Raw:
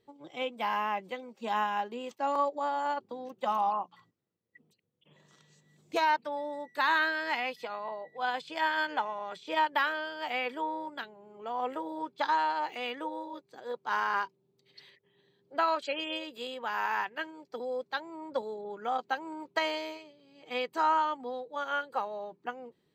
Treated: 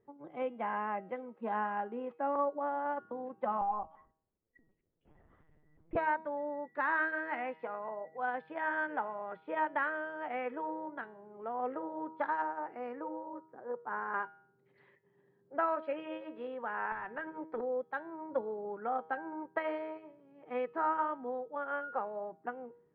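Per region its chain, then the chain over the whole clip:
3.61–5.96 s: peaking EQ 1.5 kHz -6.5 dB 0.21 oct + LPC vocoder at 8 kHz pitch kept
12.42–14.14 s: distance through air 500 m + careless resampling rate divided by 6×, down filtered, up hold
16.92–17.61 s: compression, threshold -37 dBFS + waveshaping leveller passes 2
whole clip: low-pass 1.7 kHz 24 dB/octave; de-hum 158.8 Hz, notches 30; dynamic bell 1 kHz, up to -6 dB, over -42 dBFS, Q 1.8

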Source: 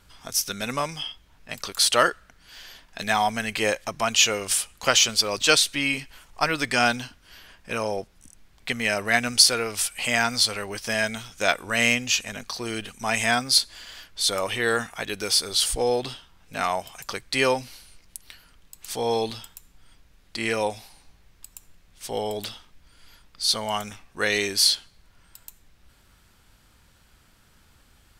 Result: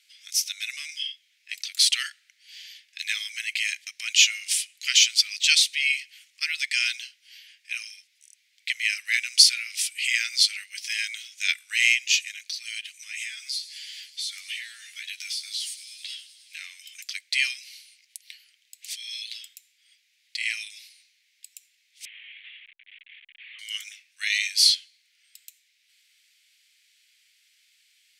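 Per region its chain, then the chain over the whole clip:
12.93–16.79 s: doubling 13 ms -4 dB + compression, threshold -29 dBFS + feedback echo behind a high-pass 104 ms, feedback 79%, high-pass 4.9 kHz, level -12.5 dB
22.05–23.59 s: one-bit delta coder 16 kbps, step -36 dBFS + band-stop 1.4 kHz, Q 6.1
whole clip: elliptic high-pass 2.1 kHz, stop band 60 dB; treble shelf 8.8 kHz -10 dB; trim +3.5 dB

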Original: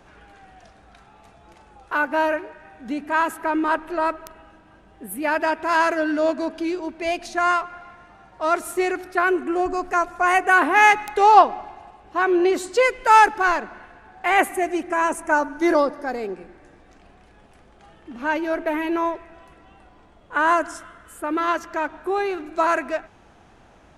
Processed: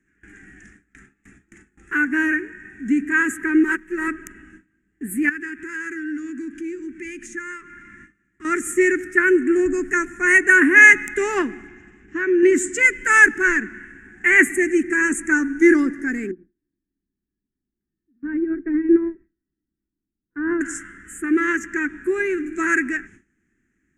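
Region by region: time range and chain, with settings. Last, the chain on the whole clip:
3.63–4.08 s: companding laws mixed up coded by A + comb 5.3 ms, depth 63% + upward expansion, over -34 dBFS
5.29–8.45 s: high-order bell 640 Hz -14.5 dB 1.1 oct + compression 2:1, threshold -43 dBFS
11.67–12.43 s: low-pass 6.5 kHz 24 dB/octave + compression, threshold -20 dBFS
16.31–20.61 s: low-pass 1.3 kHz + tilt shelf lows +7 dB, about 770 Hz + upward expansion 2.5:1, over -30 dBFS
whole clip: gate with hold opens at -39 dBFS; FFT filter 120 Hz 0 dB, 260 Hz +9 dB, 370 Hz +4 dB, 600 Hz -28 dB, 1 kHz -20 dB, 1.8 kHz +12 dB, 4.3 kHz -21 dB, 7.1 kHz +11 dB, 12 kHz -4 dB; trim +1.5 dB

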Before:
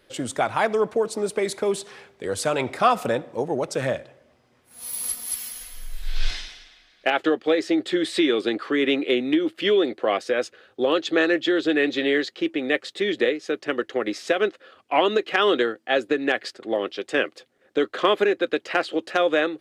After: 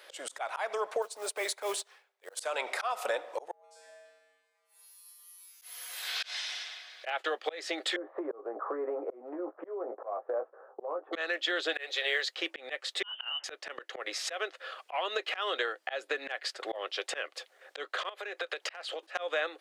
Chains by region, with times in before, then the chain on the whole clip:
1.02–2.37 s: transient shaper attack -7 dB, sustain +5 dB + companded quantiser 6-bit + upward expansion 2.5:1, over -44 dBFS
3.51–5.62 s: compression 5:1, threshold -42 dBFS + feedback comb 92 Hz, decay 1.2 s, harmonics odd, mix 100%
7.96–11.13 s: steep low-pass 1.1 kHz + doubling 17 ms -6 dB + compression 2:1, threshold -25 dBFS
11.73–12.36 s: steep high-pass 380 Hz + treble shelf 5 kHz +5.5 dB + short-mantissa float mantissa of 6-bit
13.03–13.44 s: frequency inversion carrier 3.3 kHz + compression 16:1, threshold -25 dBFS
18.09–19.03 s: high-pass 350 Hz 24 dB/octave + compression 10:1, threshold -33 dBFS
whole clip: high-pass 570 Hz 24 dB/octave; slow attack 385 ms; compression 2.5:1, threshold -42 dBFS; trim +8.5 dB

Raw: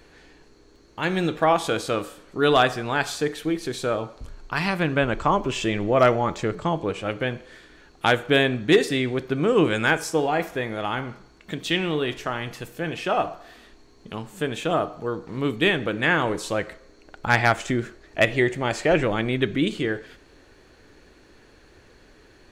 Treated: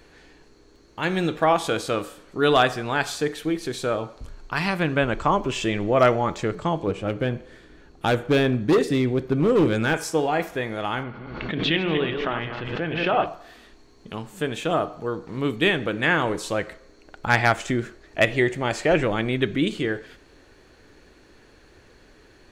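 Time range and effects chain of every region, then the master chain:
6.87–9.94 s: tilt shelf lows +5 dB, about 670 Hz + hard clipper -14 dBFS
11.03–13.26 s: backward echo that repeats 118 ms, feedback 43%, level -6 dB + low-pass 3.6 kHz 24 dB/octave + swell ahead of each attack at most 40 dB/s
whole clip: none

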